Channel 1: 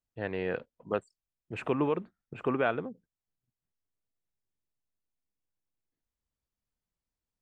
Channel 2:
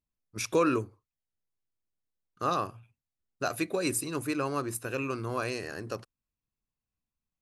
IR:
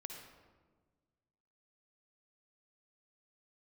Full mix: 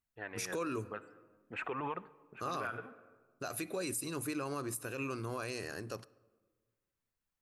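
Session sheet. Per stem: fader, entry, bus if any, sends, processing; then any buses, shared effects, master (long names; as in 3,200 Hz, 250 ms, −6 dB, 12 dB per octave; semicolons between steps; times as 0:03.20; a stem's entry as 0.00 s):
−6.0 dB, 0.00 s, send −14.5 dB, parametric band 1,500 Hz +13.5 dB 2 octaves; flanger 0.53 Hz, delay 0.8 ms, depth 8.4 ms, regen +32%; automatic ducking −9 dB, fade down 0.40 s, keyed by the second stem
−5.0 dB, 0.00 s, send −15.5 dB, high-shelf EQ 6,100 Hz +7 dB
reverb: on, RT60 1.4 s, pre-delay 49 ms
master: brickwall limiter −28.5 dBFS, peak gain reduction 10 dB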